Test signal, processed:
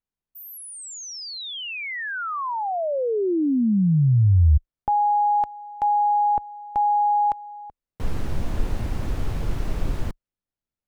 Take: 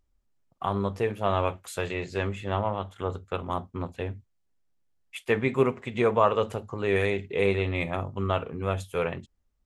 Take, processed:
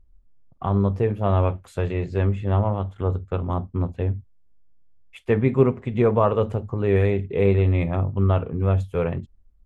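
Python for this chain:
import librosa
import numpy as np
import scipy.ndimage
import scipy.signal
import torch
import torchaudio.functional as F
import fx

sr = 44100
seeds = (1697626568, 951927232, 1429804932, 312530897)

y = fx.tilt_eq(x, sr, slope=-3.5)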